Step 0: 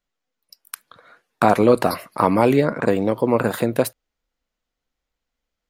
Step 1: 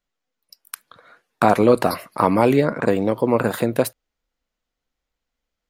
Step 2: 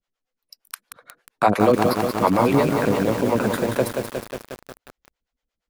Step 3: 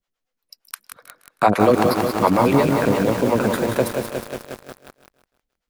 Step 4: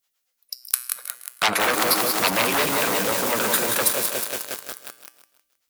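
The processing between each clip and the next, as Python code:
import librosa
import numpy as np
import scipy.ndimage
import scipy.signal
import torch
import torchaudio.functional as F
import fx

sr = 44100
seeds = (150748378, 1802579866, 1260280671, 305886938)

y1 = x
y2 = fx.high_shelf(y1, sr, hz=9900.0, db=-5.5)
y2 = fx.harmonic_tremolo(y2, sr, hz=8.6, depth_pct=100, crossover_hz=430.0)
y2 = fx.echo_crushed(y2, sr, ms=180, feedback_pct=80, bits=6, wet_db=-5)
y2 = y2 * librosa.db_to_amplitude(2.5)
y3 = fx.echo_feedback(y2, sr, ms=158, feedback_pct=38, wet_db=-12.0)
y3 = y3 * librosa.db_to_amplitude(1.5)
y4 = fx.comb_fb(y3, sr, f0_hz=62.0, decay_s=0.62, harmonics='odd', damping=0.0, mix_pct=60)
y4 = fx.fold_sine(y4, sr, drive_db=12, ceiling_db=-8.0)
y4 = fx.tilt_eq(y4, sr, slope=4.0)
y4 = y4 * librosa.db_to_amplitude(-8.0)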